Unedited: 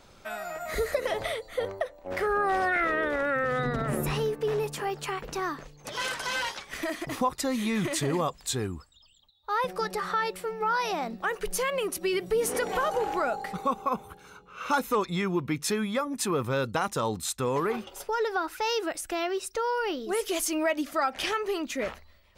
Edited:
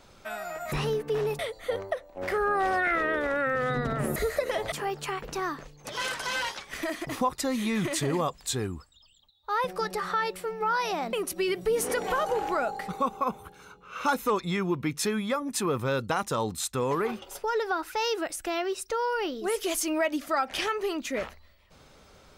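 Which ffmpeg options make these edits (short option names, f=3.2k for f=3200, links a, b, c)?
-filter_complex "[0:a]asplit=6[a][b][c][d][e][f];[a]atrim=end=0.722[g];[b]atrim=start=4.048:end=4.722[h];[c]atrim=start=1.278:end=4.052[i];[d]atrim=start=0.718:end=1.282[j];[e]atrim=start=4.718:end=11.132[k];[f]atrim=start=11.778[l];[g][h]acrossfade=d=0.004:c1=hsin:c2=hsin[m];[m][i]acrossfade=d=0.004:c1=hsin:c2=hsin[n];[n][j]acrossfade=d=0.004:c1=hsin:c2=hsin[o];[o][k]acrossfade=d=0.004:c1=hsin:c2=hsin[p];[p][l]acrossfade=d=0.004:c1=hsin:c2=hsin"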